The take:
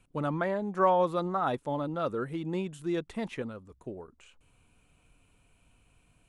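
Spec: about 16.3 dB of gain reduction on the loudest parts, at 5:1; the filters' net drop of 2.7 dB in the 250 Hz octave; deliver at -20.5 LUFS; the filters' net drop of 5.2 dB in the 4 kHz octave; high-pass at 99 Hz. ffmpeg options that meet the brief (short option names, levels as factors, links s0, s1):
-af "highpass=99,equalizer=f=250:t=o:g=-4,equalizer=f=4000:t=o:g=-6.5,acompressor=threshold=0.0112:ratio=5,volume=13.3"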